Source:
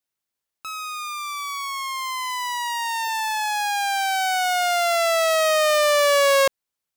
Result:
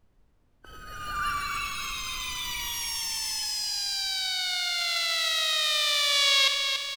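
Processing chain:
high-pass filter 43 Hz 12 dB per octave
high-shelf EQ 10,000 Hz +5.5 dB
in parallel at −10 dB: log-companded quantiser 2 bits
on the sum: band-pass filter sweep 260 Hz → 3,000 Hz, 0:00.47–0:01.75
background noise brown −63 dBFS
formants moved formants +3 semitones
on a send: repeating echo 66 ms, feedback 29%, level −11 dB
on the sum: spring reverb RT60 1.1 s, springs 33 ms, chirp 50 ms, DRR 18 dB
feedback echo at a low word length 284 ms, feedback 55%, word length 8 bits, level −6 dB

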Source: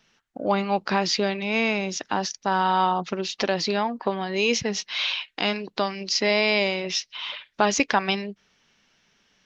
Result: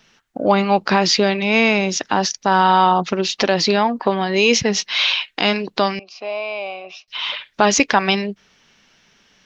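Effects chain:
in parallel at +1 dB: brickwall limiter −14 dBFS, peak gain reduction 7.5 dB
0:05.99–0:07.08: on the sum: formant filter a
level +2 dB

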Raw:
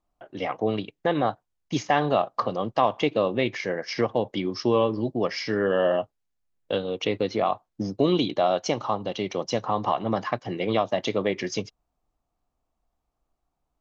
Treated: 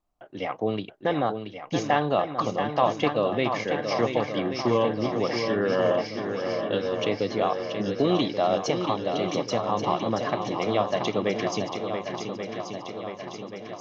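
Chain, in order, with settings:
feedback echo with a long and a short gap by turns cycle 1,132 ms, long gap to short 1.5 to 1, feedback 58%, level −7 dB
level −1.5 dB

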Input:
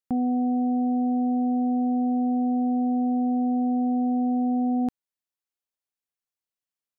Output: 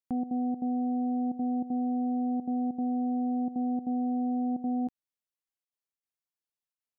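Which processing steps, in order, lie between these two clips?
gate pattern "xxx.xxx.xxxxxx" 194 BPM −12 dB
level −5.5 dB

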